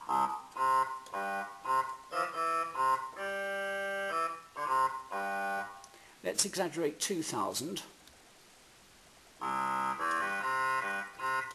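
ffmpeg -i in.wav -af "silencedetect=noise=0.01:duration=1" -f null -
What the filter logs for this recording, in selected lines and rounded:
silence_start: 8.08
silence_end: 9.42 | silence_duration: 1.34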